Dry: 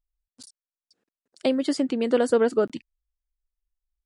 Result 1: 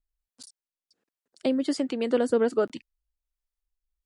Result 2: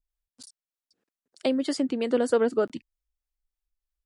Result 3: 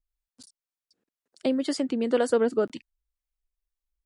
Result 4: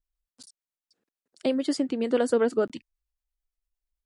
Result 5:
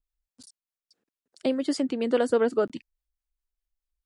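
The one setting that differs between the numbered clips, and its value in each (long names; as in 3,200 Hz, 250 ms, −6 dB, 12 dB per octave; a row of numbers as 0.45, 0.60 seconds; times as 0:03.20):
two-band tremolo in antiphase, speed: 1.3, 3.2, 2, 8.9, 4.8 Hertz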